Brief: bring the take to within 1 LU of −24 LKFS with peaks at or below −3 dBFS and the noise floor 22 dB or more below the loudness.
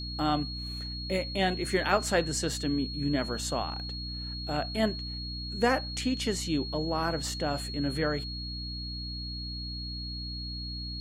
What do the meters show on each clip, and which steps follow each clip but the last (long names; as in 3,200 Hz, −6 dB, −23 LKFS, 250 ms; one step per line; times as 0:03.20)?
mains hum 60 Hz; hum harmonics up to 300 Hz; level of the hum −36 dBFS; interfering tone 4,300 Hz; level of the tone −38 dBFS; integrated loudness −31.0 LKFS; sample peak −11.0 dBFS; target loudness −24.0 LKFS
→ mains-hum notches 60/120/180/240/300 Hz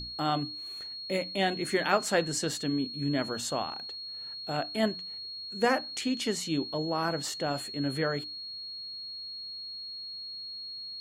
mains hum none found; interfering tone 4,300 Hz; level of the tone −38 dBFS
→ notch filter 4,300 Hz, Q 30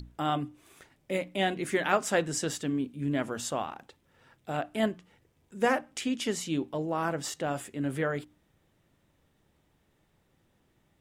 interfering tone none found; integrated loudness −31.0 LKFS; sample peak −11.0 dBFS; target loudness −24.0 LKFS
→ level +7 dB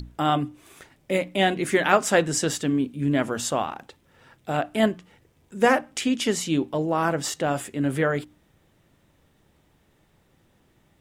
integrated loudness −24.0 LKFS; sample peak −4.0 dBFS; background noise floor −64 dBFS